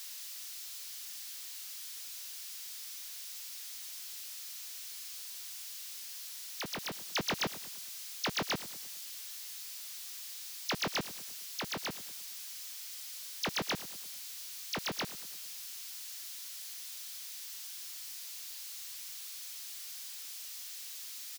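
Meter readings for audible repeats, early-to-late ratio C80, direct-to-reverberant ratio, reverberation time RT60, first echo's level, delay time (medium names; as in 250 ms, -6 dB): 3, no reverb, no reverb, no reverb, -16.5 dB, 106 ms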